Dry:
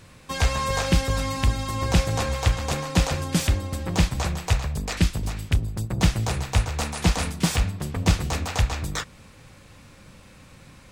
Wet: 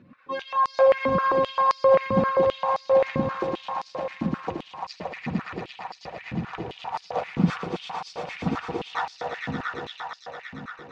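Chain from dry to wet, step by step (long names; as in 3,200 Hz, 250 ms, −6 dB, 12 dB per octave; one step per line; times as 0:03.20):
expanding power law on the bin magnitudes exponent 1.8
0:03.23–0:04.25: output level in coarse steps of 20 dB
high-frequency loss of the air 250 metres
echo that builds up and dies away 114 ms, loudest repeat 5, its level −6 dB
high-pass on a step sequencer 7.6 Hz 240–4,900 Hz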